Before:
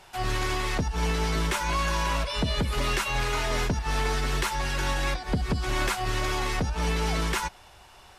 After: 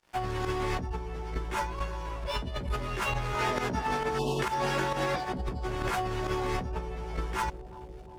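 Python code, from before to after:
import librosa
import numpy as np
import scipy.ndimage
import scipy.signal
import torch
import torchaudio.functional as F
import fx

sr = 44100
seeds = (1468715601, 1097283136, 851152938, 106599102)

y = fx.high_shelf(x, sr, hz=2200.0, db=-11.5)
y = np.sign(y) * np.maximum(np.abs(y) - 10.0 ** (-50.5 / 20.0), 0.0)
y = fx.highpass(y, sr, hz=160.0, slope=12, at=(3.33, 5.39))
y = fx.doubler(y, sr, ms=16.0, db=-2.0)
y = fx.volume_shaper(y, sr, bpm=134, per_beat=1, depth_db=-14, release_ms=140.0, shape='fast start')
y = fx.notch(y, sr, hz=4000.0, q=24.0)
y = fx.over_compress(y, sr, threshold_db=-32.0, ratio=-1.0)
y = fx.spec_erase(y, sr, start_s=4.19, length_s=0.21, low_hz=1100.0, high_hz=2600.0)
y = fx.echo_bbd(y, sr, ms=356, stages=2048, feedback_pct=81, wet_db=-15.0)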